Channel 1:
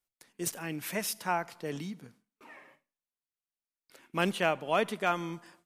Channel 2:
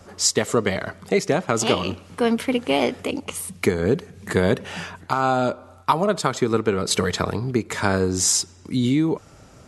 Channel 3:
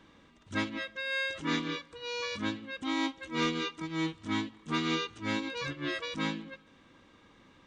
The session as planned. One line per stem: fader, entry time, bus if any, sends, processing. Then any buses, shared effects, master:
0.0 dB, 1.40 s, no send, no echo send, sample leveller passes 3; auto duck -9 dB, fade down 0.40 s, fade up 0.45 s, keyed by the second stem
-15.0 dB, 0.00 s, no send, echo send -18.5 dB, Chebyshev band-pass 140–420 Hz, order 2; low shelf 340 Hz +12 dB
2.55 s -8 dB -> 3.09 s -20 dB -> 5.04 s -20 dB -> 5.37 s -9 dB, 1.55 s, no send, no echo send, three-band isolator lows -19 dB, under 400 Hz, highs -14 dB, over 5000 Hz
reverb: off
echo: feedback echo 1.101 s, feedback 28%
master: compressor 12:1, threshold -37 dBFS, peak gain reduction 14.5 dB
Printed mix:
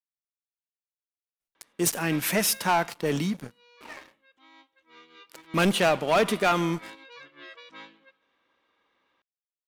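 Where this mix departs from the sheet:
stem 2: muted; master: missing compressor 12:1, threshold -37 dBFS, peak gain reduction 14.5 dB

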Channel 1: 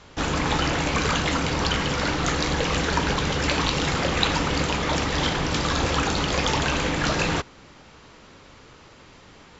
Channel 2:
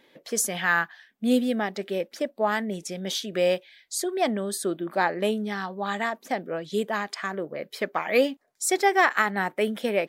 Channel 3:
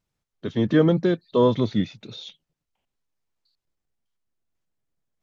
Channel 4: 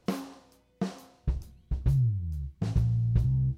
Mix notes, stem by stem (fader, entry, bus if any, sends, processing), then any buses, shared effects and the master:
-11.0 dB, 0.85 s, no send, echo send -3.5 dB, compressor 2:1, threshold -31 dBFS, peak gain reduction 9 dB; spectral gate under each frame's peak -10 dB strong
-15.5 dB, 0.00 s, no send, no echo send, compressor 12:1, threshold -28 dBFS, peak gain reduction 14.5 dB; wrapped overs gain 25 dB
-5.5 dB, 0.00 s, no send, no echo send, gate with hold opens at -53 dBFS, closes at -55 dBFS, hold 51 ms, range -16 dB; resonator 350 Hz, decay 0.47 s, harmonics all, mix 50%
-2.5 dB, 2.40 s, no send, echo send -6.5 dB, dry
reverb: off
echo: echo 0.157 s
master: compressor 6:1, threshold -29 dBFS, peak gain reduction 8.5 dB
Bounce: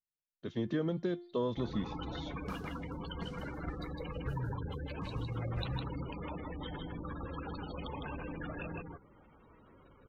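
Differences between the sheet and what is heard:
stem 1: entry 0.85 s -> 1.40 s; stem 2: muted; stem 4 -2.5 dB -> -14.0 dB

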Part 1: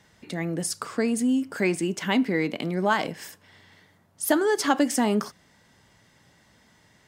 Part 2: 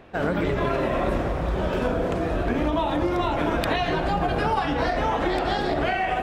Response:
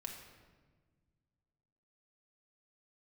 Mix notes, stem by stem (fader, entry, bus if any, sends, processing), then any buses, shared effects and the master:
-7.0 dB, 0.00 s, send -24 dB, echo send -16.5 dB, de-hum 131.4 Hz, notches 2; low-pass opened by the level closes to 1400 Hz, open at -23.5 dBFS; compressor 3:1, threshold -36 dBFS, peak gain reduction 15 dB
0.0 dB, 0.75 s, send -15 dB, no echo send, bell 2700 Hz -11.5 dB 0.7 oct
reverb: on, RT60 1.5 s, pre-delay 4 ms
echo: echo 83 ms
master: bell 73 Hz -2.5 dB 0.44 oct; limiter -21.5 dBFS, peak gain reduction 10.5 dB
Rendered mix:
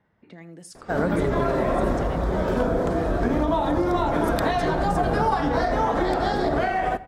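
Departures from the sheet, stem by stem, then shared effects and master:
stem 2: send -15 dB -> -7.5 dB; master: missing limiter -21.5 dBFS, peak gain reduction 10.5 dB

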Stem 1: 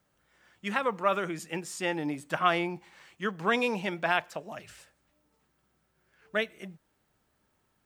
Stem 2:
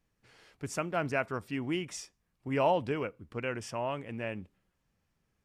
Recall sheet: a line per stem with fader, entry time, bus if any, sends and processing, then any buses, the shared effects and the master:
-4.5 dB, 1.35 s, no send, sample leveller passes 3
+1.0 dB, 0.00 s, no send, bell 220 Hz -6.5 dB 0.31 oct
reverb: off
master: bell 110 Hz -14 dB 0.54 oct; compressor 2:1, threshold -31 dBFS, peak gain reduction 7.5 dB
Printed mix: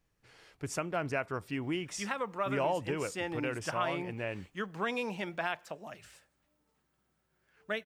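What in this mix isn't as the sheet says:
stem 1: missing sample leveller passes 3; master: missing bell 110 Hz -14 dB 0.54 oct

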